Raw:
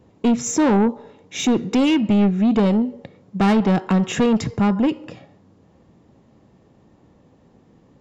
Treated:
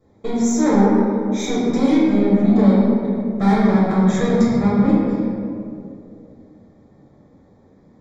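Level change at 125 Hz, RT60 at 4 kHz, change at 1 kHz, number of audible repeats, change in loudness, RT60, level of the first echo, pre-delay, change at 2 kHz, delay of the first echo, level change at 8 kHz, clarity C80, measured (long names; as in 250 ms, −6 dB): +3.0 dB, 1.2 s, +1.5 dB, no echo audible, +2.0 dB, 2.7 s, no echo audible, 4 ms, −1.0 dB, no echo audible, can't be measured, −0.5 dB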